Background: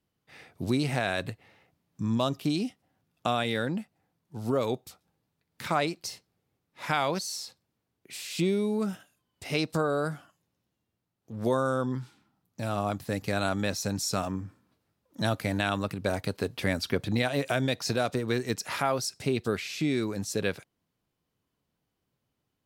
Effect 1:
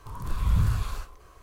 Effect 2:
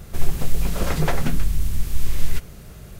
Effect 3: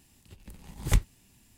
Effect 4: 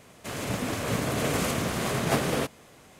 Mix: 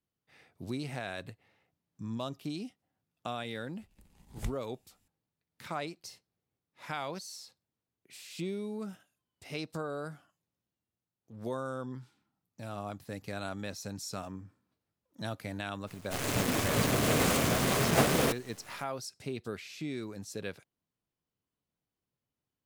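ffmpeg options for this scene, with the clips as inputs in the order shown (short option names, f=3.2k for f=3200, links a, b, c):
-filter_complex "[0:a]volume=-10dB[a];[4:a]acrusher=bits=6:dc=4:mix=0:aa=0.000001[b];[3:a]atrim=end=1.57,asetpts=PTS-STARTPTS,volume=-14dB,afade=t=in:d=0.004:c=hsin,afade=t=out:st=1.566:d=0.004:c=hsin,adelay=3510[c];[b]atrim=end=2.99,asetpts=PTS-STARTPTS,volume=-0.5dB,afade=t=in:d=0.02,afade=t=out:st=2.97:d=0.02,adelay=15860[d];[a][c][d]amix=inputs=3:normalize=0"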